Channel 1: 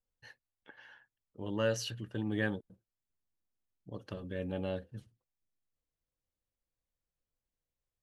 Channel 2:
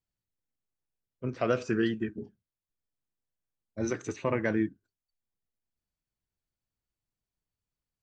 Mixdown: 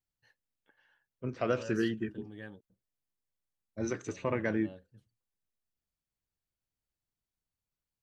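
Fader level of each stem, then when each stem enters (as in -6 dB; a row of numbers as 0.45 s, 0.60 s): -13.5 dB, -3.0 dB; 0.00 s, 0.00 s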